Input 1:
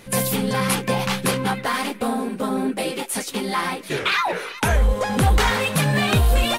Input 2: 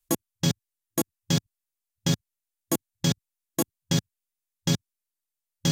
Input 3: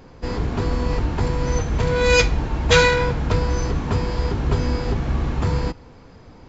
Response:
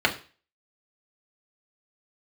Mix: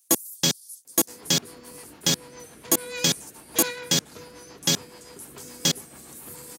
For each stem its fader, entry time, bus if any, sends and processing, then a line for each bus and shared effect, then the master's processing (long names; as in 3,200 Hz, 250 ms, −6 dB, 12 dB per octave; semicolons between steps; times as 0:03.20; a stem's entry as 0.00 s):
−15.0 dB, 0.00 s, no send, inverse Chebyshev high-pass filter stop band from 2,600 Hz, stop band 50 dB; brickwall limiter −23.5 dBFS, peak gain reduction 9 dB
+1.5 dB, 0.00 s, no send, no processing
−17.0 dB, 0.85 s, no send, rotating-speaker cabinet horn 7 Hz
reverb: not used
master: high-pass filter 240 Hz 12 dB per octave; high-shelf EQ 2,300 Hz +8.5 dB